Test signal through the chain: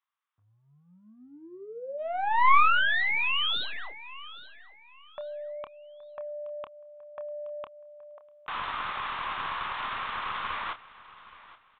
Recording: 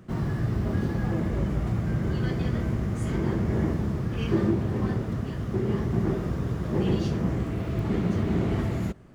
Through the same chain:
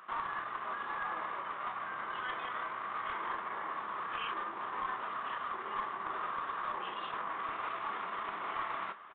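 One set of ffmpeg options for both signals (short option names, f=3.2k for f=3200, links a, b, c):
-filter_complex "[0:a]acompressor=threshold=-25dB:ratio=6,alimiter=level_in=2dB:limit=-24dB:level=0:latency=1:release=10,volume=-2dB,highpass=f=1.1k:t=q:w=4.5,aresample=11025,aeval=exprs='clip(val(0),-1,0.02)':c=same,aresample=44100,asplit=2[a][b];[b]adelay=28,volume=-10dB[c];[a][c]amix=inputs=2:normalize=0,asplit=2[d][e];[e]aecho=0:1:823|1646|2469:0.126|0.0365|0.0106[f];[d][f]amix=inputs=2:normalize=0,aresample=8000,aresample=44100,volume=2dB"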